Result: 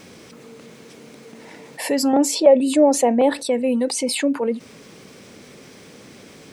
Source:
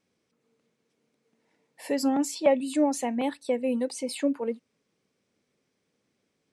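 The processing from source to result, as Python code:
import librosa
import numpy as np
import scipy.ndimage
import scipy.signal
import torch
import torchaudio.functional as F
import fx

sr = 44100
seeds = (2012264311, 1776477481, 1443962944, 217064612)

y = fx.peak_eq(x, sr, hz=520.0, db=13.5, octaves=1.4, at=(2.13, 3.43))
y = fx.env_flatten(y, sr, amount_pct=50)
y = y * 10.0 ** (-4.0 / 20.0)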